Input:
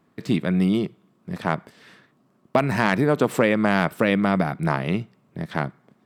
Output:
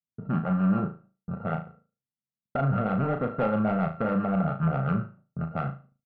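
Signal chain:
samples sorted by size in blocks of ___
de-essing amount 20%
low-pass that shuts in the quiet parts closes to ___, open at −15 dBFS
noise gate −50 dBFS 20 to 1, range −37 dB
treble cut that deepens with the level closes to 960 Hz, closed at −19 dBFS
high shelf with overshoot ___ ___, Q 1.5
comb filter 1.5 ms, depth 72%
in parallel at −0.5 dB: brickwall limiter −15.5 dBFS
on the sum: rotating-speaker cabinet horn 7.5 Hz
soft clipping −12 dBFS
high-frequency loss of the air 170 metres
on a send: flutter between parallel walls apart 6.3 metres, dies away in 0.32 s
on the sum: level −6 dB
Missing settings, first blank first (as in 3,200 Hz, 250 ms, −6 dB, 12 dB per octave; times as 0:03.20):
32 samples, 330 Hz, 2,000 Hz, −6.5 dB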